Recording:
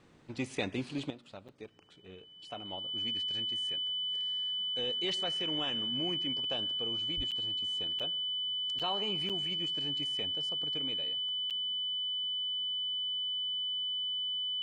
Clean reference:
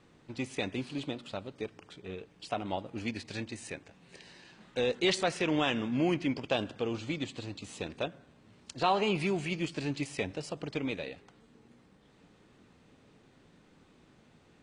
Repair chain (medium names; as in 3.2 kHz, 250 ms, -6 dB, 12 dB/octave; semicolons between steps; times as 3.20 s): band-stop 3 kHz, Q 30; 7.16–7.28 s: high-pass 140 Hz 24 dB/octave; interpolate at 1.48/7.31/7.99/8.79/9.29/11.50 s, 7.1 ms; trim 0 dB, from 1.10 s +9.5 dB